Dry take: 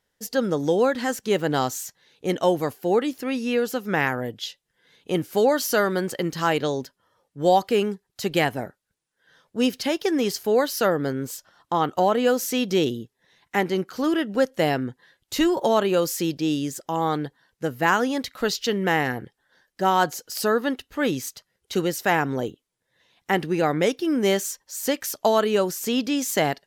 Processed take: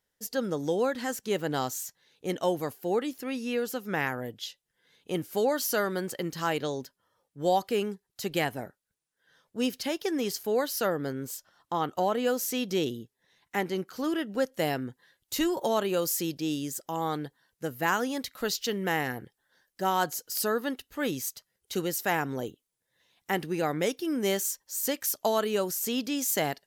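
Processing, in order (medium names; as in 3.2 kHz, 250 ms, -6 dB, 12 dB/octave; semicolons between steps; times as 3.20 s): treble shelf 7.8 kHz +7 dB, from 14.57 s +12 dB; trim -7 dB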